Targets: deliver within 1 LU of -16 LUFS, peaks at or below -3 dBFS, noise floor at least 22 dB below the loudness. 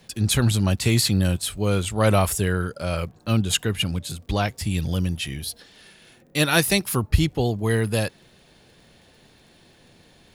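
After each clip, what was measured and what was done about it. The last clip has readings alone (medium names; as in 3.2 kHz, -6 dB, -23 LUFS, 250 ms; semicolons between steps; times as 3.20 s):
tick rate 29 per s; loudness -23.0 LUFS; peak level -3.5 dBFS; loudness target -16.0 LUFS
-> de-click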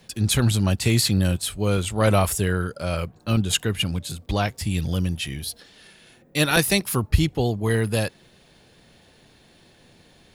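tick rate 1.2 per s; loudness -23.0 LUFS; peak level -5.0 dBFS; loudness target -16.0 LUFS
-> trim +7 dB; peak limiter -3 dBFS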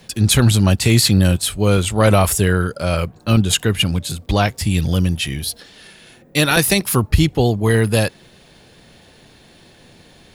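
loudness -16.5 LUFS; peak level -3.0 dBFS; noise floor -49 dBFS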